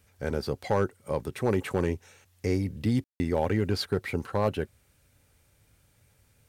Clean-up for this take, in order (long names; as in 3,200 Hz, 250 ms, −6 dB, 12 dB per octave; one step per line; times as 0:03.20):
clipped peaks rebuilt −16 dBFS
ambience match 0:03.04–0:03.20